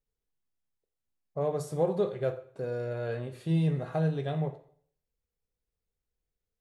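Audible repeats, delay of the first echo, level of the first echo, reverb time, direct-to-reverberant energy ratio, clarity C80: no echo, no echo, no echo, 0.55 s, 9.5 dB, 17.0 dB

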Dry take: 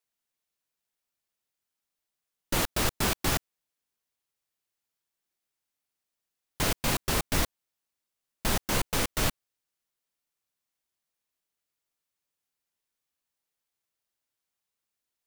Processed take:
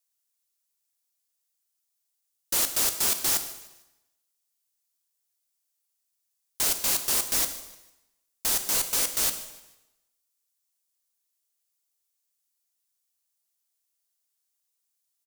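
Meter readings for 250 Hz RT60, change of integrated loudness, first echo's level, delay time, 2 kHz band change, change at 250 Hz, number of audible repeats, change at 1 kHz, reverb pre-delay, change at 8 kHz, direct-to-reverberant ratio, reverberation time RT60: 0.95 s, +5.0 dB, -19.0 dB, 150 ms, -3.5 dB, -10.0 dB, 2, -5.0 dB, 6 ms, +8.0 dB, 7.5 dB, 0.95 s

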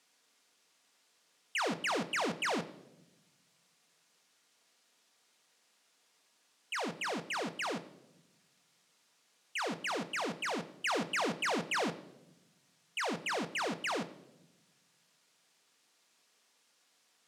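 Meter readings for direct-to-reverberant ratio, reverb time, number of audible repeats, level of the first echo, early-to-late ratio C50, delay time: 9.0 dB, 0.95 s, no echo, no echo, 16.0 dB, no echo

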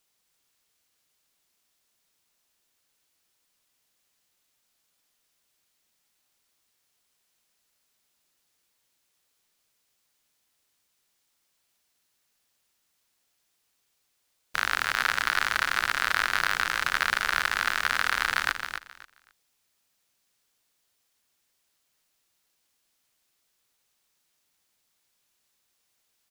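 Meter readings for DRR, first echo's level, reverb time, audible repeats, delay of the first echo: no reverb, -7.5 dB, no reverb, 2, 266 ms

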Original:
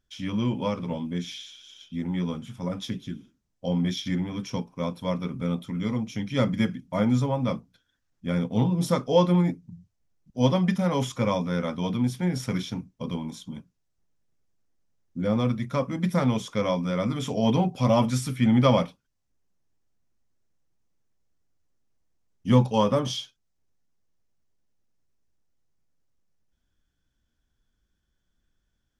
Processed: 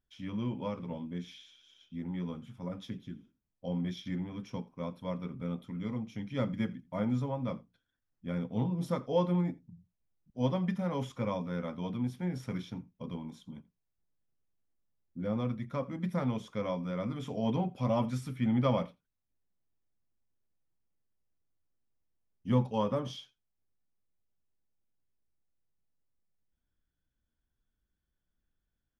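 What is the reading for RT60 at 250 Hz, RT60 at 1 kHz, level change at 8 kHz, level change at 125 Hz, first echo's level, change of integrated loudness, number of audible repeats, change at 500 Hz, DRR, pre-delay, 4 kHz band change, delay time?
no reverb, no reverb, under -15 dB, -8.5 dB, -23.0 dB, -8.5 dB, 1, -8.5 dB, no reverb, no reverb, -13.0 dB, 84 ms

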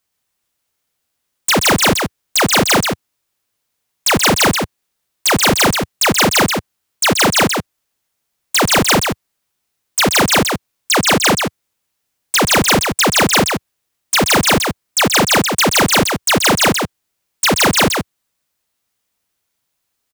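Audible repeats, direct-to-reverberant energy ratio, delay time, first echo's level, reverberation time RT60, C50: 1, no reverb, 130 ms, -5.0 dB, no reverb, no reverb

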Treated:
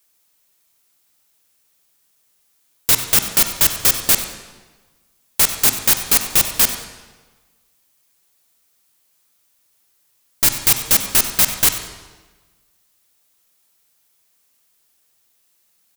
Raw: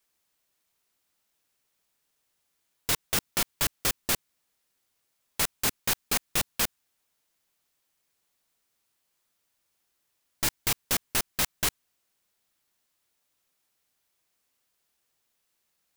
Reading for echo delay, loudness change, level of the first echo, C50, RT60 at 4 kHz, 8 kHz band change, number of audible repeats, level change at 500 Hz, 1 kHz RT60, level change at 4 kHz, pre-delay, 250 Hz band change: 94 ms, +13.0 dB, -15.5 dB, 7.5 dB, 1.1 s, +13.0 dB, 1, +7.5 dB, 1.3 s, +10.0 dB, 33 ms, +7.5 dB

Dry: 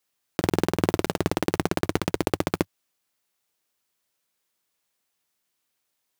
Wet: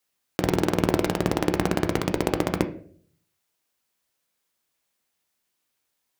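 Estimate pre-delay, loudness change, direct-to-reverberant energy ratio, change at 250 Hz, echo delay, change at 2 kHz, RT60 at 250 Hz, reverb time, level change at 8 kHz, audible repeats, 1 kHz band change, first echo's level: 13 ms, +1.5 dB, 7.0 dB, +1.5 dB, no echo, +0.5 dB, 0.65 s, 0.55 s, 0.0 dB, no echo, +1.0 dB, no echo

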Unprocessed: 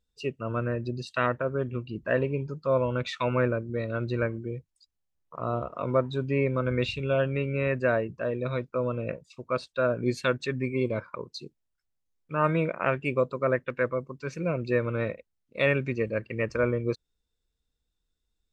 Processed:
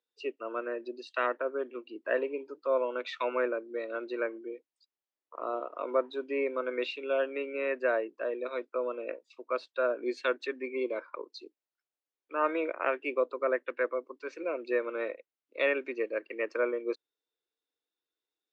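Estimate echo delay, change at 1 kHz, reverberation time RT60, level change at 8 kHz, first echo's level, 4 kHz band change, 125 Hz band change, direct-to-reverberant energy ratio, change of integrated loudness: no echo, -3.0 dB, no reverb, no reading, no echo, -5.0 dB, under -40 dB, no reverb, -4.5 dB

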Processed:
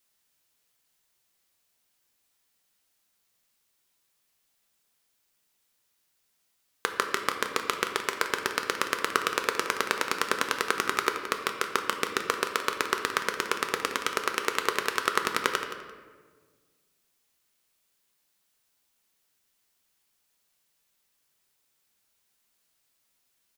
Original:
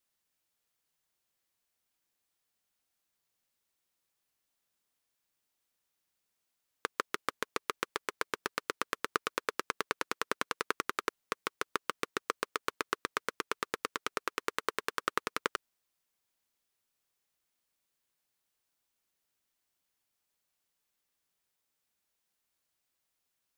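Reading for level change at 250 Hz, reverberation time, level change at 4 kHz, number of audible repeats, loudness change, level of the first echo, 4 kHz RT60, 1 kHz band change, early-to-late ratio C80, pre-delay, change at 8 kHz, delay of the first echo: +7.0 dB, 1.5 s, +9.0 dB, 1, +8.0 dB, -12.5 dB, 0.85 s, +7.5 dB, 7.5 dB, 5 ms, +9.5 dB, 172 ms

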